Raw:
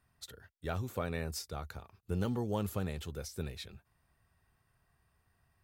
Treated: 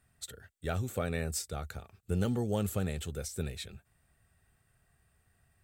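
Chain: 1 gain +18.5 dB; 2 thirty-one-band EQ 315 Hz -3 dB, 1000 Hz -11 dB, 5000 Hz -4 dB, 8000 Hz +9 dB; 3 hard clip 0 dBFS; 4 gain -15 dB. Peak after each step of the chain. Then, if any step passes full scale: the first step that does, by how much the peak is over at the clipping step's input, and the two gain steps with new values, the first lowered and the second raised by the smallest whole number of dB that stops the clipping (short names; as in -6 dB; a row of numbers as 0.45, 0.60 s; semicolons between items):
-3.0, -3.0, -3.0, -18.0 dBFS; no overload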